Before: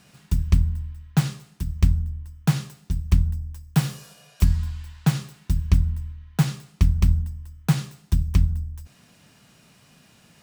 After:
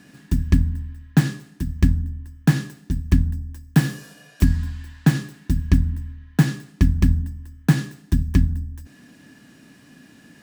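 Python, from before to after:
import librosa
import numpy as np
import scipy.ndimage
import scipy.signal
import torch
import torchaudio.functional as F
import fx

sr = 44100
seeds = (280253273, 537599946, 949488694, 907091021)

y = fx.small_body(x, sr, hz=(280.0, 1700.0), ring_ms=40, db=17)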